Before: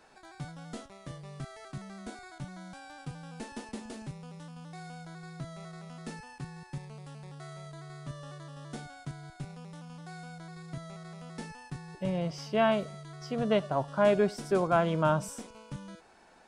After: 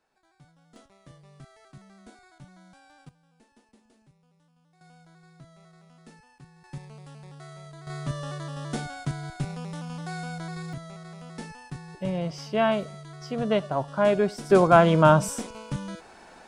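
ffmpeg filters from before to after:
-af "asetnsamples=n=441:p=0,asendcmd='0.76 volume volume -7.5dB;3.09 volume volume -19.5dB;4.81 volume volume -9.5dB;6.64 volume volume 0.5dB;7.87 volume volume 10dB;10.73 volume volume 2.5dB;14.5 volume volume 9.5dB',volume=0.168"

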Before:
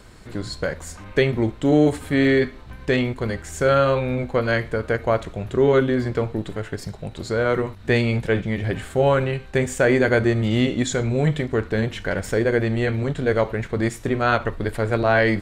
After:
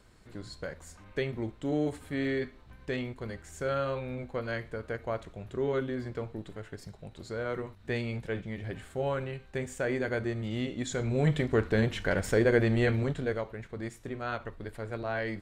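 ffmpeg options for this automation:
-af "volume=0.631,afade=t=in:st=10.76:d=0.73:silence=0.334965,afade=t=out:st=12.9:d=0.53:silence=0.266073"

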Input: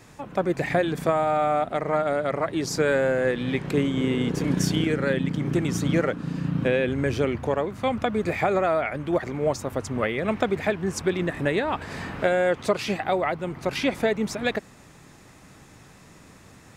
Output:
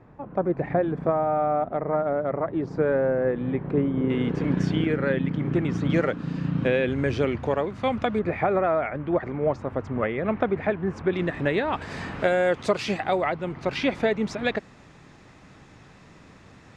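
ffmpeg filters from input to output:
-af "asetnsamples=n=441:p=0,asendcmd='4.1 lowpass f 2500;5.9 lowpass f 5000;8.19 lowpass f 1900;11.13 lowpass f 4300;11.74 lowpass f 7600;13.29 lowpass f 4600',lowpass=1100"

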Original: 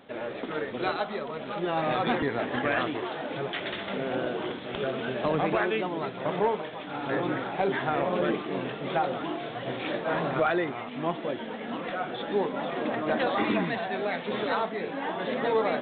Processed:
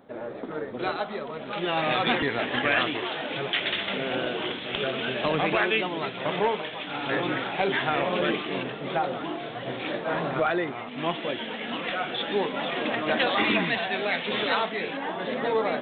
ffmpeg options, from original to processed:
-af "asetnsamples=n=441:p=0,asendcmd='0.79 equalizer g 0;1.53 equalizer g 10.5;8.63 equalizer g 2;10.98 equalizer g 11.5;14.97 equalizer g 2',equalizer=f=2900:t=o:w=1.4:g=-11"

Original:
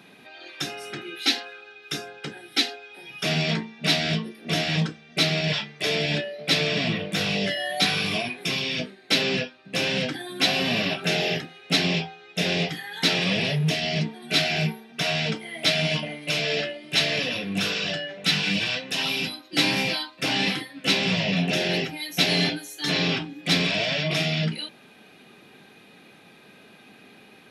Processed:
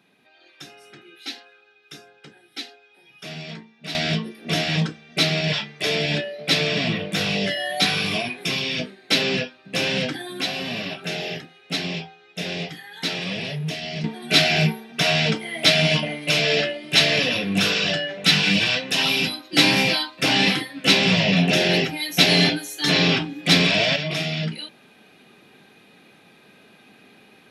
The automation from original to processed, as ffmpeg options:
-af "asetnsamples=n=441:p=0,asendcmd='3.95 volume volume 2dB;10.41 volume volume -4.5dB;14.04 volume volume 5.5dB;23.96 volume volume -1dB',volume=0.282"

